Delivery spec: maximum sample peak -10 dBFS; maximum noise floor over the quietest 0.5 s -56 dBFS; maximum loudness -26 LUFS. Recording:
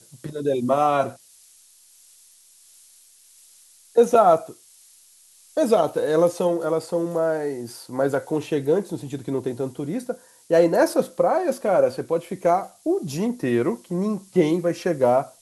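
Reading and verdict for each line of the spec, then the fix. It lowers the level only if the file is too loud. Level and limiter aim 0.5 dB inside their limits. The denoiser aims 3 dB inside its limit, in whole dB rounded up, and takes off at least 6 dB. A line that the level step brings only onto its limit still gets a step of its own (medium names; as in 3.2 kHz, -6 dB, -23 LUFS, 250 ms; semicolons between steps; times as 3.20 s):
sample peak -4.5 dBFS: fail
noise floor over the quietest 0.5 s -53 dBFS: fail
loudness -22.5 LUFS: fail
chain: trim -4 dB; peak limiter -10.5 dBFS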